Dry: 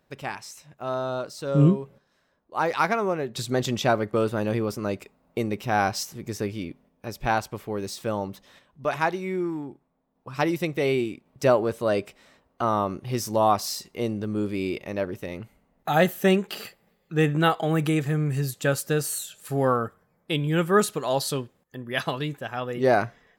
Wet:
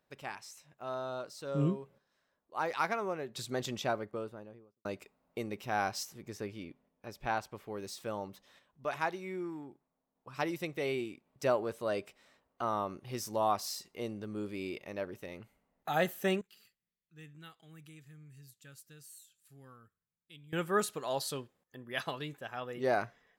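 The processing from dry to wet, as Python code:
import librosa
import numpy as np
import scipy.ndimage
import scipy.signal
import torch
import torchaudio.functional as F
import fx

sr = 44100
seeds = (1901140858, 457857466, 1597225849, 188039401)

y = fx.studio_fade_out(x, sr, start_s=3.64, length_s=1.21)
y = fx.high_shelf(y, sr, hz=4900.0, db=-6.0, at=(6.22, 7.67))
y = fx.tone_stack(y, sr, knobs='6-0-2', at=(16.41, 20.53))
y = fx.low_shelf(y, sr, hz=320.0, db=-6.0)
y = F.gain(torch.from_numpy(y), -8.5).numpy()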